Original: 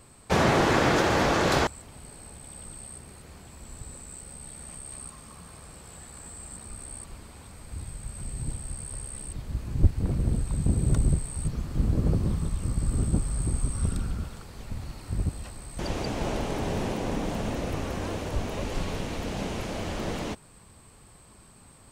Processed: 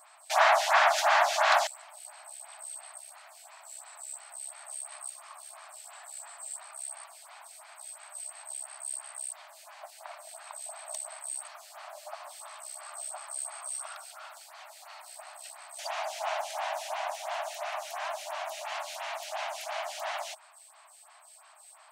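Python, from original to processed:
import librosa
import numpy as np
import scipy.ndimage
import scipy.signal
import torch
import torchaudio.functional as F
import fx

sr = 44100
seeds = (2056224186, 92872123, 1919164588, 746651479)

y = fx.brickwall_highpass(x, sr, low_hz=590.0)
y = fx.stagger_phaser(y, sr, hz=2.9)
y = F.gain(torch.from_numpy(y), 5.0).numpy()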